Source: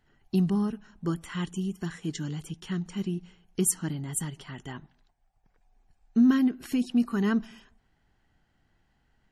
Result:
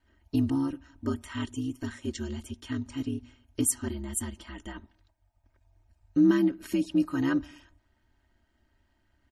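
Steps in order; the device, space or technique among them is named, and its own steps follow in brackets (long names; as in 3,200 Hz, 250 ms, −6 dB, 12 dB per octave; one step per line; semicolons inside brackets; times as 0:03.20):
ring-modulated robot voice (ring modulation 68 Hz; comb filter 3.2 ms, depth 76%)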